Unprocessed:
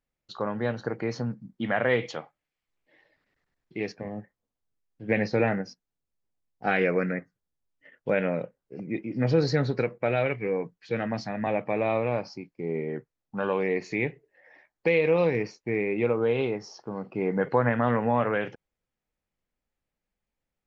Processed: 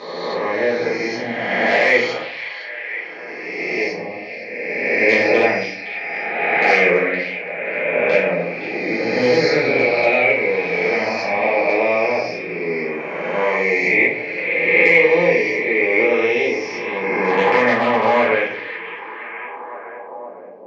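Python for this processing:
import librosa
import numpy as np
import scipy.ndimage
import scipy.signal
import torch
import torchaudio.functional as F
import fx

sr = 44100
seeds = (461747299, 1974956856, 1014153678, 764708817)

p1 = fx.spec_swells(x, sr, rise_s=2.0)
p2 = 10.0 ** (-12.0 / 20.0) * (np.abs((p1 / 10.0 ** (-12.0 / 20.0) + 3.0) % 4.0 - 2.0) - 1.0)
p3 = fx.cabinet(p2, sr, low_hz=330.0, low_slope=12, high_hz=5600.0, hz=(380.0, 1400.0, 2200.0, 3800.0), db=(-3, -9, 9, -4))
p4 = fx.notch_comb(p3, sr, f0_hz=1300.0, at=(14.87, 16.01))
p5 = p4 + fx.echo_stepped(p4, sr, ms=515, hz=3300.0, octaves=-0.7, feedback_pct=70, wet_db=-7.5, dry=0)
p6 = fx.room_shoebox(p5, sr, seeds[0], volume_m3=54.0, walls='mixed', distance_m=1.3)
y = p6 * 10.0 ** (1.5 / 20.0)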